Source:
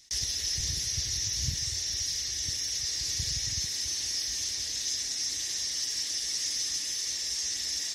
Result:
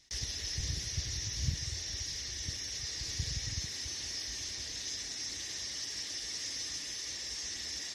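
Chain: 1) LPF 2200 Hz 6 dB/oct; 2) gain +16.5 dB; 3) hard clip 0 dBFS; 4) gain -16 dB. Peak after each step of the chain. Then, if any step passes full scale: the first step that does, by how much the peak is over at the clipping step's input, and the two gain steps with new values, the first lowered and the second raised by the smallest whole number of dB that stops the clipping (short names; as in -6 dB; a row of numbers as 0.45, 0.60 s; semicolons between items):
-20.0, -3.5, -3.5, -19.5 dBFS; no overload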